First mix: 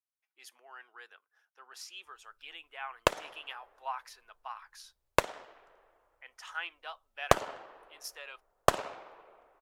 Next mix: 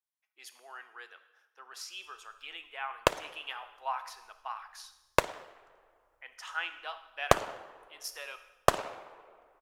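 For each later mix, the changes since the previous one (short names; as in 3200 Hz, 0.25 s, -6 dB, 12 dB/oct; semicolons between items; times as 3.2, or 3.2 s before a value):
reverb: on, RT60 0.95 s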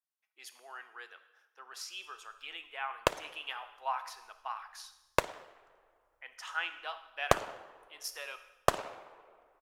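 background -3.0 dB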